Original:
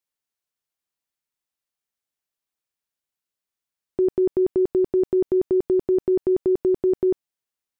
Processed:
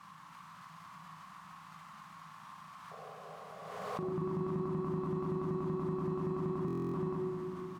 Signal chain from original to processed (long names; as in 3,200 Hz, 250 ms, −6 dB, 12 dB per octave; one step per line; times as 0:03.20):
converter with a step at zero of −42 dBFS
pair of resonant band-passes 430 Hz, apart 2.7 octaves
double-tracking delay 38 ms −4 dB
convolution reverb RT60 3.5 s, pre-delay 39 ms, DRR −2.5 dB
in parallel at −2 dB: downward compressor, threshold −58 dBFS, peak gain reduction 17.5 dB
on the sum: sound drawn into the spectrogram noise, 0:02.91–0:04.14, 400–820 Hz −58 dBFS
buffer that repeats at 0:06.66, samples 1,024, times 11
background raised ahead of every attack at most 28 dB per second
level +6 dB